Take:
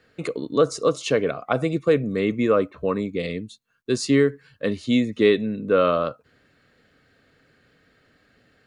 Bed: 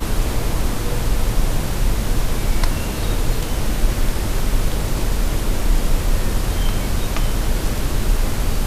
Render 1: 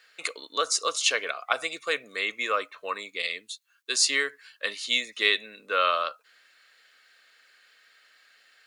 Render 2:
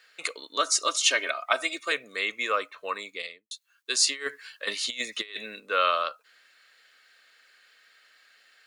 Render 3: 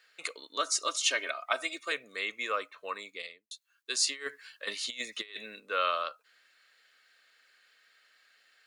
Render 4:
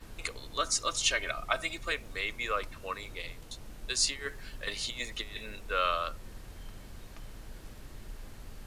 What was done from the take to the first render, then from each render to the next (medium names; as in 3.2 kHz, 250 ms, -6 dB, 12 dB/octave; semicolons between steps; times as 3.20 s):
high-pass 700 Hz 12 dB/octave; tilt shelf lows -9 dB, about 1.1 kHz
0.58–1.92 s: comb 3.2 ms, depth 81%; 3.07–3.51 s: studio fade out; 4.06–5.60 s: compressor with a negative ratio -31 dBFS, ratio -0.5
trim -5.5 dB
add bed -27 dB